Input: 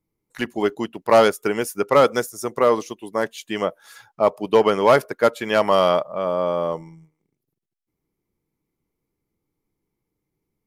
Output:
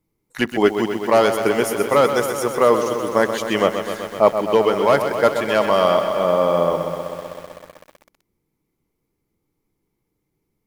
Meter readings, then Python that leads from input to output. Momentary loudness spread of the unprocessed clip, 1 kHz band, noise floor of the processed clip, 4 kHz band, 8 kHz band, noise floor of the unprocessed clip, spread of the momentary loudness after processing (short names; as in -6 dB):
12 LU, +1.5 dB, -75 dBFS, +2.0 dB, +4.0 dB, -81 dBFS, 10 LU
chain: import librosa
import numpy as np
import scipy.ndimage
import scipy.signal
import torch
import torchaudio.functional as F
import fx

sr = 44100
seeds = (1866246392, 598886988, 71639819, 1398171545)

y = fx.rider(x, sr, range_db=4, speed_s=0.5)
y = fx.echo_crushed(y, sr, ms=127, feedback_pct=80, bits=7, wet_db=-8.5)
y = y * 10.0 ** (1.5 / 20.0)